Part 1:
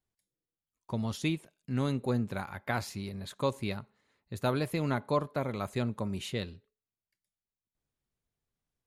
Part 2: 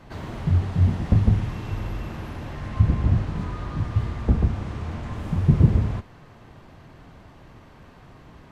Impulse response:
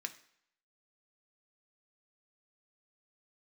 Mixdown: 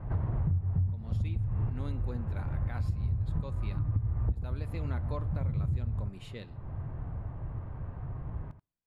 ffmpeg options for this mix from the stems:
-filter_complex "[0:a]bandreject=f=6k:w=8.4,volume=-11.5dB,asplit=3[a][b][c];[b]volume=-5.5dB[d];[1:a]lowpass=1.2k,lowshelf=f=160:t=q:w=1.5:g=10.5,acompressor=threshold=-18dB:ratio=2,volume=0.5dB,asplit=3[e][f][g];[f]volume=-17.5dB[h];[g]volume=-12.5dB[i];[c]apad=whole_len=375345[j];[e][j]sidechaincompress=threshold=-57dB:ratio=8:attack=44:release=269[k];[2:a]atrim=start_sample=2205[l];[d][h]amix=inputs=2:normalize=0[m];[m][l]afir=irnorm=-1:irlink=0[n];[i]aecho=0:1:84:1[o];[a][k][n][o]amix=inputs=4:normalize=0,highshelf=f=4.5k:g=-8,acompressor=threshold=-27dB:ratio=6"

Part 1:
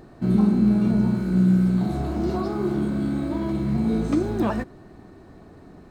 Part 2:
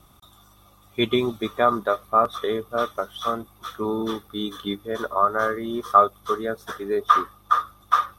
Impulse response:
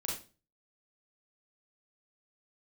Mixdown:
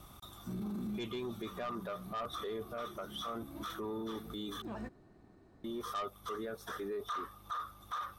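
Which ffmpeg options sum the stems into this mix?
-filter_complex "[0:a]adelay=250,volume=-15.5dB[a];[1:a]asoftclip=type=tanh:threshold=-16dB,alimiter=level_in=1dB:limit=-24dB:level=0:latency=1:release=403,volume=-1dB,volume=0dB,asplit=3[b][c][d];[b]atrim=end=4.62,asetpts=PTS-STARTPTS,afade=t=out:st=4.616:d=0.004:c=hsin[e];[c]atrim=start=4.62:end=5.64,asetpts=PTS-STARTPTS,volume=0[f];[d]atrim=start=5.64,asetpts=PTS-STARTPTS,afade=t=in:d=0.004:c=hsin[g];[e][f][g]concat=n=3:v=0:a=1,asplit=2[h][i];[i]apad=whole_len=271617[j];[a][j]sidechaincompress=threshold=-46dB:ratio=8:attack=11:release=269[k];[k][h]amix=inputs=2:normalize=0,alimiter=level_in=9.5dB:limit=-24dB:level=0:latency=1:release=11,volume=-9.5dB"

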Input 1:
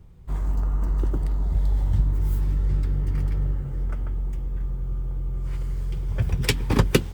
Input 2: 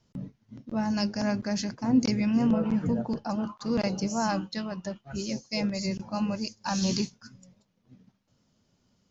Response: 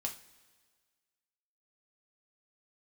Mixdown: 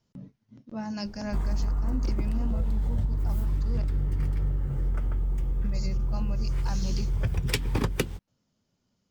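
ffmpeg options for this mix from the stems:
-filter_complex "[0:a]adelay=1050,volume=2.5dB[a];[1:a]volume=-6dB,asplit=3[b][c][d];[b]atrim=end=3.84,asetpts=PTS-STARTPTS,afade=t=out:st=3.836:d=0.004:c=hsin[e];[c]atrim=start=3.84:end=5.64,asetpts=PTS-STARTPTS,volume=0[f];[d]atrim=start=5.64,asetpts=PTS-STARTPTS,afade=t=in:d=0.004:c=hsin[g];[e][f][g]concat=n=3:v=0:a=1[h];[a][h]amix=inputs=2:normalize=0,asoftclip=type=tanh:threshold=-1dB,acompressor=threshold=-23dB:ratio=6"

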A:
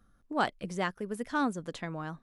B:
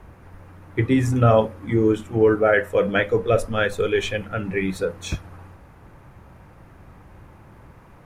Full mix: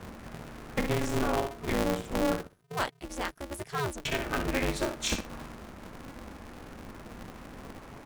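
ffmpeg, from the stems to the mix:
-filter_complex "[0:a]adelay=2400,volume=-3dB[a];[1:a]lowpass=7.3k,acompressor=threshold=-29dB:ratio=4,volume=0.5dB,asplit=3[b][c][d];[b]atrim=end=2.41,asetpts=PTS-STARTPTS,afade=t=out:st=2.406:d=0.004:c=hsin[e];[c]atrim=start=2.41:end=4.05,asetpts=PTS-STARTPTS,volume=0[f];[d]atrim=start=4.05,asetpts=PTS-STARTPTS,afade=t=in:d=0.004:c=hsin[g];[e][f][g]concat=n=3:v=0:a=1,asplit=3[h][i][j];[i]volume=-7dB[k];[j]apad=whole_len=203822[l];[a][l]sidechaincompress=threshold=-33dB:ratio=8:attack=16:release=262[m];[k]aecho=0:1:62|124|186:1|0.18|0.0324[n];[m][h][n]amix=inputs=3:normalize=0,highshelf=f=5.1k:g=10,aeval=exprs='val(0)*sgn(sin(2*PI*140*n/s))':c=same"

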